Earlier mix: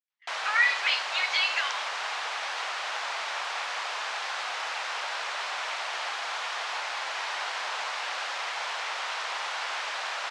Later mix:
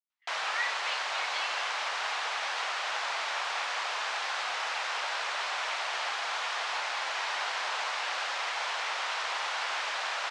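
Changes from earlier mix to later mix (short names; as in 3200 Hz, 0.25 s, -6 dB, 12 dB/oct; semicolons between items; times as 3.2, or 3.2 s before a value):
speech -11.0 dB; master: add LPF 11000 Hz 12 dB/oct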